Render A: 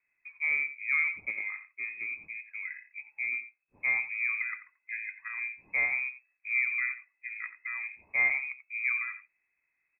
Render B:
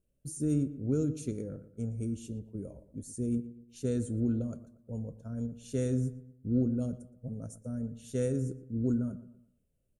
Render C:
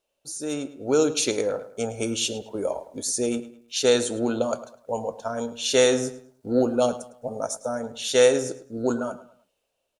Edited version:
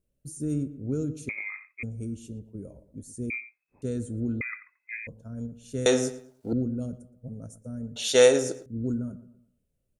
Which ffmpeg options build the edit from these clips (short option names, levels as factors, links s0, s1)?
-filter_complex "[0:a]asplit=3[s0][s1][s2];[2:a]asplit=2[s3][s4];[1:a]asplit=6[s5][s6][s7][s8][s9][s10];[s5]atrim=end=1.292[s11];[s0]atrim=start=1.288:end=1.832[s12];[s6]atrim=start=1.828:end=3.302[s13];[s1]atrim=start=3.298:end=3.822[s14];[s7]atrim=start=3.818:end=4.412[s15];[s2]atrim=start=4.408:end=5.072[s16];[s8]atrim=start=5.068:end=5.862[s17];[s3]atrim=start=5.858:end=6.532[s18];[s9]atrim=start=6.528:end=7.962[s19];[s4]atrim=start=7.958:end=8.662[s20];[s10]atrim=start=8.658[s21];[s11][s12]acrossfade=d=0.004:c1=hsin:c2=hsin[s22];[s22][s13]acrossfade=d=0.004:c1=hsin:c2=hsin[s23];[s23][s14]acrossfade=d=0.004:c1=hsin:c2=hsin[s24];[s24][s15]acrossfade=d=0.004:c1=hsin:c2=hsin[s25];[s25][s16]acrossfade=d=0.004:c1=hsin:c2=hsin[s26];[s26][s17]acrossfade=d=0.004:c1=hsin:c2=hsin[s27];[s27][s18]acrossfade=d=0.004:c1=hsin:c2=hsin[s28];[s28][s19]acrossfade=d=0.004:c1=hsin:c2=hsin[s29];[s29][s20]acrossfade=d=0.004:c1=hsin:c2=hsin[s30];[s30][s21]acrossfade=d=0.004:c1=hsin:c2=hsin"